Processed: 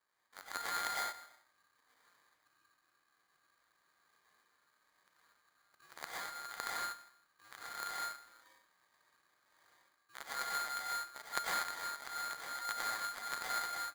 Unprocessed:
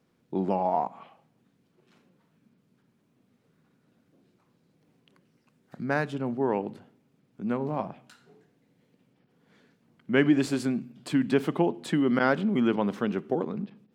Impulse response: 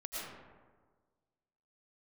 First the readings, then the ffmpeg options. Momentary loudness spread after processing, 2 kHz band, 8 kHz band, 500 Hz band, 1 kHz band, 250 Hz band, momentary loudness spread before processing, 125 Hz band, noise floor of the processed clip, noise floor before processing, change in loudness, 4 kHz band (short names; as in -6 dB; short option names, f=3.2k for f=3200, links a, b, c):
15 LU, -6.5 dB, +5.0 dB, -25.0 dB, -7.0 dB, -37.5 dB, 11 LU, under -30 dB, -78 dBFS, -70 dBFS, -12.0 dB, 0.0 dB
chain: -filter_complex "[0:a]lowshelf=f=140:g=-9.5,areverse,acompressor=threshold=-40dB:ratio=12,areverse,acrusher=samples=34:mix=1:aa=0.000001,aeval=exprs='0.0316*(cos(1*acos(clip(val(0)/0.0316,-1,1)))-cos(1*PI/2))+0.0141*(cos(2*acos(clip(val(0)/0.0316,-1,1)))-cos(2*PI/2))+0.0126*(cos(3*acos(clip(val(0)/0.0316,-1,1)))-cos(3*PI/2))+0.00141*(cos(4*acos(clip(val(0)/0.0316,-1,1)))-cos(4*PI/2))+0.000447*(cos(8*acos(clip(val(0)/0.0316,-1,1)))-cos(8*PI/2))':c=same,asplit=2[a][b];[b]adelay=159,lowpass=f=2k:p=1,volume=-21dB,asplit=2[c][d];[d]adelay=159,lowpass=f=2k:p=1,volume=0.3[e];[a][c][e]amix=inputs=3:normalize=0[f];[1:a]atrim=start_sample=2205,afade=t=out:st=0.3:d=0.01,atrim=end_sample=13671[g];[f][g]afir=irnorm=-1:irlink=0,aeval=exprs='val(0)*sgn(sin(2*PI*1400*n/s))':c=same,volume=8dB"